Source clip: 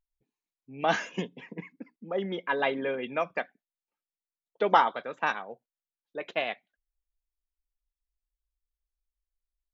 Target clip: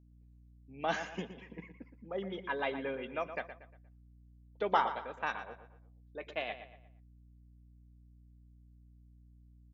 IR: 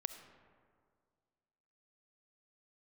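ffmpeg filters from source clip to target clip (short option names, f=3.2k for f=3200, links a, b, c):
-filter_complex "[0:a]aeval=exprs='val(0)+0.00251*(sin(2*PI*60*n/s)+sin(2*PI*2*60*n/s)/2+sin(2*PI*3*60*n/s)/3+sin(2*PI*4*60*n/s)/4+sin(2*PI*5*60*n/s)/5)':c=same,asplit=2[a][b];[b]adelay=118,lowpass=f=3.9k:p=1,volume=-10.5dB,asplit=2[c][d];[d]adelay=118,lowpass=f=3.9k:p=1,volume=0.39,asplit=2[e][f];[f]adelay=118,lowpass=f=3.9k:p=1,volume=0.39,asplit=2[g][h];[h]adelay=118,lowpass=f=3.9k:p=1,volume=0.39[i];[a][c][e][g][i]amix=inputs=5:normalize=0,volume=-7.5dB"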